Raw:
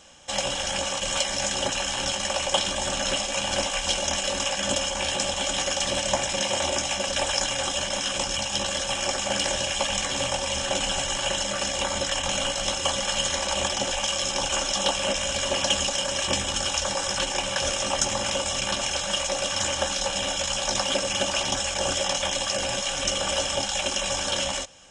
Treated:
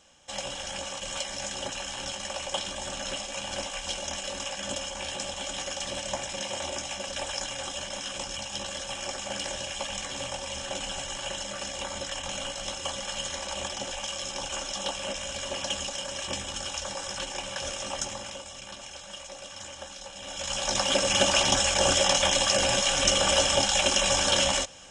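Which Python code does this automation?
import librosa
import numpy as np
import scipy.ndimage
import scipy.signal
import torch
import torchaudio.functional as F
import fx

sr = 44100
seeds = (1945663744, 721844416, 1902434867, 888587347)

y = fx.gain(x, sr, db=fx.line((18.01, -8.0), (18.49, -15.5), (20.17, -15.5), (20.51, -4.0), (21.19, 3.0)))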